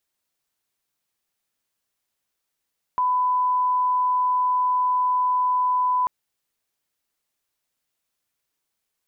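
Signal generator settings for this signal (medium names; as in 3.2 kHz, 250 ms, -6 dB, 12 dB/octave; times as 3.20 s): line-up tone -18 dBFS 3.09 s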